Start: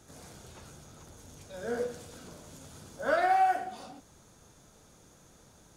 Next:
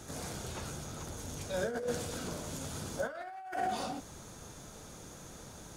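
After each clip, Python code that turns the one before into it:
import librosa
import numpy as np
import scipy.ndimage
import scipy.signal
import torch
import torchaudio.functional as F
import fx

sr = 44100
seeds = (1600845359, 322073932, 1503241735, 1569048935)

y = fx.over_compress(x, sr, threshold_db=-39.0, ratio=-1.0)
y = F.gain(torch.from_numpy(y), 2.0).numpy()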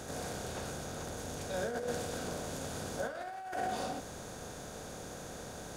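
y = fx.bin_compress(x, sr, power=0.6)
y = F.gain(torch.from_numpy(y), -4.0).numpy()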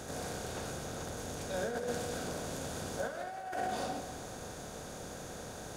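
y = fx.echo_feedback(x, sr, ms=202, feedback_pct=51, wet_db=-12.5)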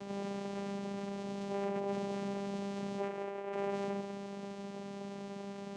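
y = np.clip(10.0 ** (33.5 / 20.0) * x, -1.0, 1.0) / 10.0 ** (33.5 / 20.0)
y = fx.vocoder(y, sr, bands=4, carrier='saw', carrier_hz=199.0)
y = F.gain(torch.from_numpy(y), 2.5).numpy()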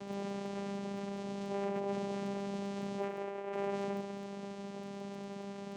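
y = fx.dmg_crackle(x, sr, seeds[0], per_s=11.0, level_db=-46.0)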